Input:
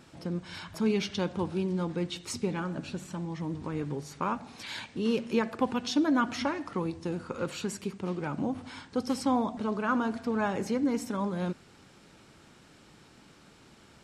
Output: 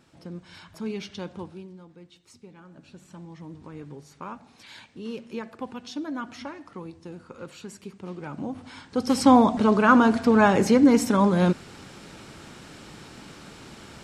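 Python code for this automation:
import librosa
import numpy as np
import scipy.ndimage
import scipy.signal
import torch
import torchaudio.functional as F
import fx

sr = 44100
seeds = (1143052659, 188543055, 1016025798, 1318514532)

y = fx.gain(x, sr, db=fx.line((1.38, -5.0), (1.83, -17.0), (2.55, -17.0), (3.16, -7.0), (7.61, -7.0), (8.83, 1.0), (9.28, 11.5)))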